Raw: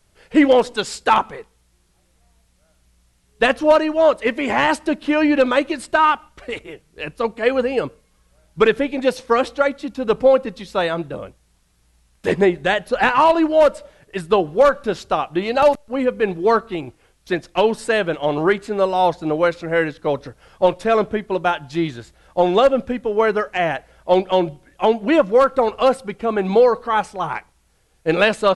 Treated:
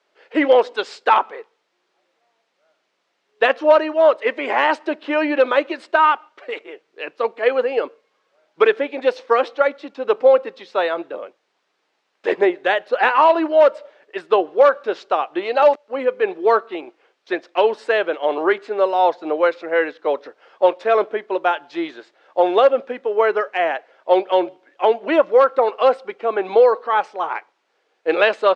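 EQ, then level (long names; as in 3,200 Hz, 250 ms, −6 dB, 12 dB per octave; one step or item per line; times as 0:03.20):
high-pass filter 360 Hz 24 dB per octave
high-frequency loss of the air 190 metres
+1.5 dB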